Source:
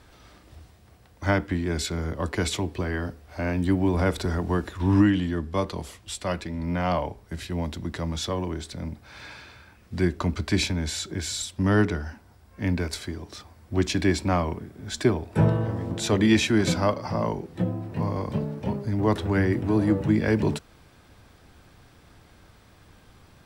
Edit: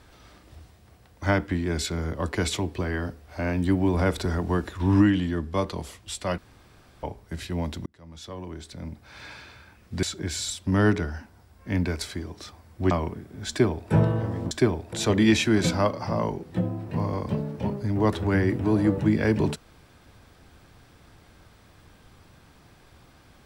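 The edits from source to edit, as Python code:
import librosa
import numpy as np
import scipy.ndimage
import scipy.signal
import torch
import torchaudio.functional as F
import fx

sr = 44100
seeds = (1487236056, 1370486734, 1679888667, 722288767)

y = fx.edit(x, sr, fx.room_tone_fill(start_s=6.38, length_s=0.65),
    fx.fade_in_span(start_s=7.86, length_s=1.45),
    fx.cut(start_s=10.03, length_s=0.92),
    fx.cut(start_s=13.83, length_s=0.53),
    fx.duplicate(start_s=14.94, length_s=0.42, to_s=15.96), tone=tone)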